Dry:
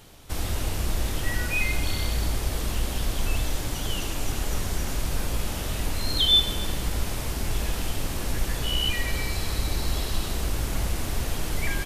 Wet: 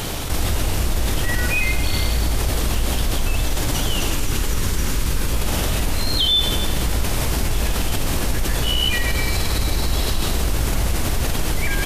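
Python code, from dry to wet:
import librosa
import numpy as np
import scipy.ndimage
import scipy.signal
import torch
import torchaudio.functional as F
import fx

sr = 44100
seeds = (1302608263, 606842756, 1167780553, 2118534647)

y = fx.peak_eq(x, sr, hz=690.0, db=-10.0, octaves=0.41, at=(4.14, 5.33))
y = fx.env_flatten(y, sr, amount_pct=70)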